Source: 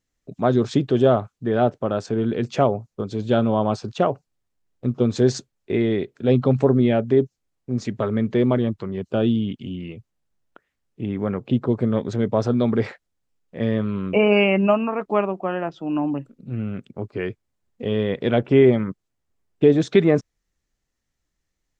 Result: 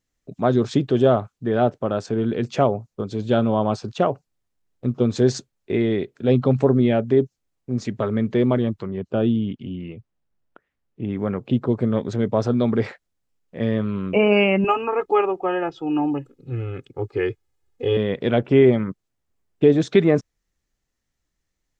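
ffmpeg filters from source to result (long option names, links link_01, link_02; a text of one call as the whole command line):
ffmpeg -i in.wav -filter_complex "[0:a]asettb=1/sr,asplit=3[link_01][link_02][link_03];[link_01]atrim=end=8.874[link_04];[link_02]atrim=start=8.87:end=11.09,asetpts=PTS-STARTPTS,afade=type=in:duration=0.004:curve=qsin,afade=type=out:start_time=2.216:duration=0.004:curve=qsin,lowpass=frequency=2300:poles=1[link_05];[link_03]atrim=start=11.086[link_06];[link_04][link_05]acrossfade=duration=0.004:curve1=hsin:curve2=qsin[link_07];[link_07][link_06]acrossfade=duration=0.004:curve1=qsin:curve2=hsin,asettb=1/sr,asplit=3[link_08][link_09][link_10];[link_08]atrim=end=14.644[link_11];[link_09]atrim=start=14.64:end=17.97,asetpts=PTS-STARTPTS,afade=type=in:duration=0.004:curve=qsin,afade=type=out:start_time=3.326:duration=0.004:curve=qsin,aecho=1:1:2.4:0.95,atrim=end_sample=146853[link_12];[link_10]atrim=start=17.966[link_13];[link_11][link_12]acrossfade=duration=0.004:curve1=hsin:curve2=qsin[link_14];[link_14][link_13]acrossfade=duration=0.004:curve1=qsin:curve2=hsin" out.wav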